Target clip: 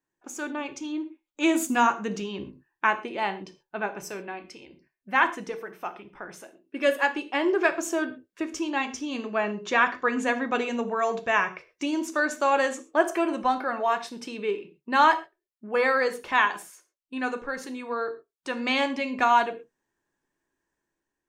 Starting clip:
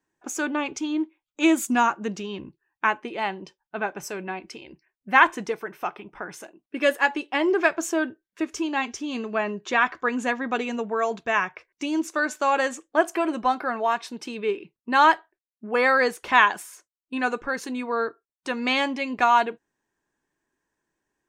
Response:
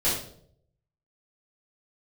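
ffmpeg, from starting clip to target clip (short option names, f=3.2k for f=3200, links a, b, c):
-filter_complex "[0:a]dynaudnorm=f=900:g=3:m=11.5dB,asplit=2[a][b];[1:a]atrim=start_sample=2205,atrim=end_sample=6174[c];[b][c]afir=irnorm=-1:irlink=0,volume=-20dB[d];[a][d]amix=inputs=2:normalize=0,volume=-8dB"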